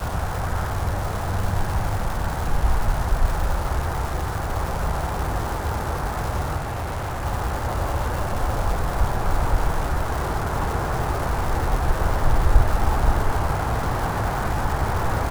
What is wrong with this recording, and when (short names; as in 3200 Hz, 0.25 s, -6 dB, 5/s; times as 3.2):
crackle 580/s -27 dBFS
6.56–7.26 clipped -24 dBFS